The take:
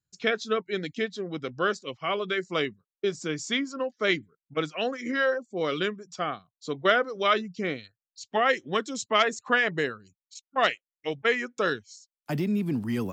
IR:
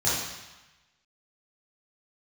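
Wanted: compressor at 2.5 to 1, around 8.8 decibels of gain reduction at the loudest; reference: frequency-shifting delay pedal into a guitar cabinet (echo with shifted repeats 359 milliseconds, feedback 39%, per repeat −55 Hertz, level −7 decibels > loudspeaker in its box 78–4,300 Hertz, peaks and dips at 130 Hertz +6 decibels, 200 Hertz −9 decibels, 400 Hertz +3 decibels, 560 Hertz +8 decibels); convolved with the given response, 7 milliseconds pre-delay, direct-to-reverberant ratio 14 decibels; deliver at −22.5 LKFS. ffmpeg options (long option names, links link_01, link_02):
-filter_complex "[0:a]acompressor=threshold=-31dB:ratio=2.5,asplit=2[link_01][link_02];[1:a]atrim=start_sample=2205,adelay=7[link_03];[link_02][link_03]afir=irnorm=-1:irlink=0,volume=-26.5dB[link_04];[link_01][link_04]amix=inputs=2:normalize=0,asplit=6[link_05][link_06][link_07][link_08][link_09][link_10];[link_06]adelay=359,afreqshift=-55,volume=-7dB[link_11];[link_07]adelay=718,afreqshift=-110,volume=-15.2dB[link_12];[link_08]adelay=1077,afreqshift=-165,volume=-23.4dB[link_13];[link_09]adelay=1436,afreqshift=-220,volume=-31.5dB[link_14];[link_10]adelay=1795,afreqshift=-275,volume=-39.7dB[link_15];[link_05][link_11][link_12][link_13][link_14][link_15]amix=inputs=6:normalize=0,highpass=78,equalizer=frequency=130:width_type=q:width=4:gain=6,equalizer=frequency=200:width_type=q:width=4:gain=-9,equalizer=frequency=400:width_type=q:width=4:gain=3,equalizer=frequency=560:width_type=q:width=4:gain=8,lowpass=frequency=4300:width=0.5412,lowpass=frequency=4300:width=1.3066,volume=9dB"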